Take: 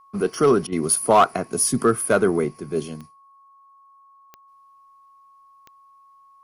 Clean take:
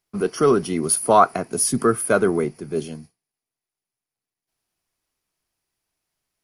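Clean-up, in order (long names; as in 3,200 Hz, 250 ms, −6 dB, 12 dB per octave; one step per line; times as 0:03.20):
clipped peaks rebuilt −8 dBFS
click removal
notch filter 1,100 Hz, Q 30
repair the gap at 0:00.67, 51 ms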